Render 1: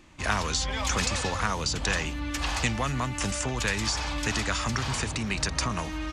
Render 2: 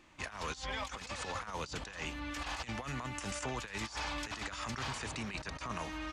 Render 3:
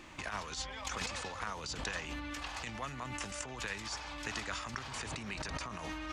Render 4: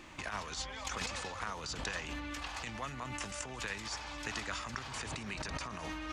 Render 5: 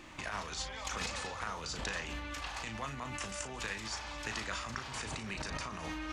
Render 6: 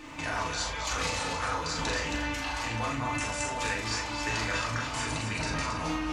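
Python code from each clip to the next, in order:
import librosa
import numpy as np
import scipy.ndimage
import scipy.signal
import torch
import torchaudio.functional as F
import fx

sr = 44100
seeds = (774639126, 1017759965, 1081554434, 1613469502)

y1 = fx.low_shelf(x, sr, hz=330.0, db=-9.5)
y1 = fx.over_compress(y1, sr, threshold_db=-33.0, ratio=-0.5)
y1 = fx.high_shelf(y1, sr, hz=4100.0, db=-6.5)
y1 = y1 * 10.0 ** (-5.5 / 20.0)
y2 = fx.over_compress(y1, sr, threshold_db=-46.0, ratio=-1.0)
y2 = y2 * 10.0 ** (4.5 / 20.0)
y3 = y2 + 10.0 ** (-17.0 / 20.0) * np.pad(y2, (int(216 * sr / 1000.0), 0))[:len(y2)]
y4 = fx.doubler(y3, sr, ms=36.0, db=-8.0)
y5 = fx.echo_multitap(y4, sr, ms=(44, 271), db=(-4.5, -6.0))
y5 = fx.rev_fdn(y5, sr, rt60_s=0.43, lf_ratio=1.0, hf_ratio=0.55, size_ms=20.0, drr_db=-0.5)
y5 = y5 * 10.0 ** (3.0 / 20.0)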